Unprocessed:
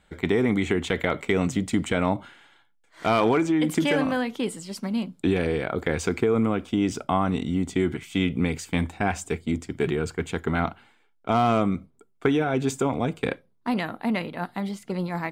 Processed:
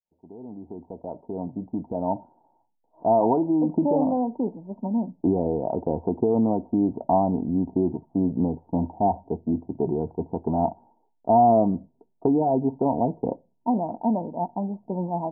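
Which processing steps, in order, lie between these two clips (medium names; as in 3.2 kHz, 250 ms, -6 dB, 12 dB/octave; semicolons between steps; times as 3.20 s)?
fade-in on the opening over 3.93 s; rippled Chebyshev low-pass 950 Hz, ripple 6 dB; tilt shelf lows -7 dB, about 630 Hz; trim +7.5 dB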